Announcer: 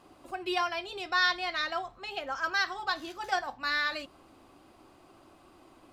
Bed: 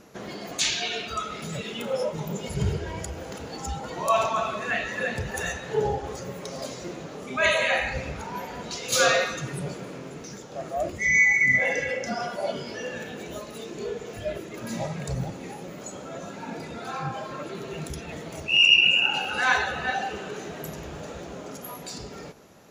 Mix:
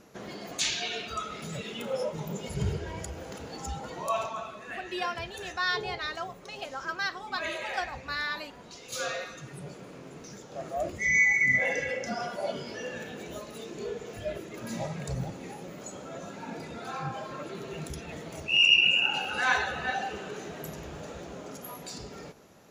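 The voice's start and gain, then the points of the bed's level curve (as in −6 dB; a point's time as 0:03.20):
4.45 s, −3.0 dB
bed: 0:03.85 −4 dB
0:04.57 −13 dB
0:09.15 −13 dB
0:10.60 −3.5 dB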